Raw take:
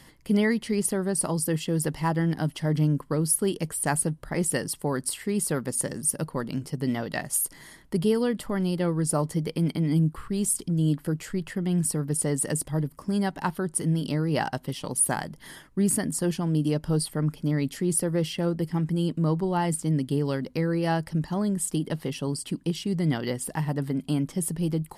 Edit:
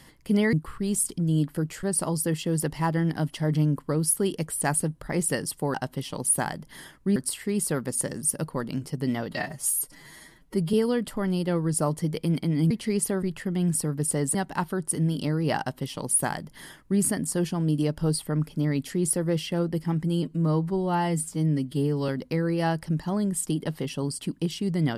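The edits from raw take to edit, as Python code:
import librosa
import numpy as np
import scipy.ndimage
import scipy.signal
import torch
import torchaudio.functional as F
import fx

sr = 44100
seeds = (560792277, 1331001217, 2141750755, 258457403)

y = fx.edit(x, sr, fx.swap(start_s=0.53, length_s=0.52, other_s=10.03, other_length_s=1.3),
    fx.stretch_span(start_s=7.11, length_s=0.95, factor=1.5),
    fx.cut(start_s=12.45, length_s=0.76),
    fx.duplicate(start_s=14.45, length_s=1.42, to_s=4.96),
    fx.stretch_span(start_s=19.09, length_s=1.24, factor=1.5), tone=tone)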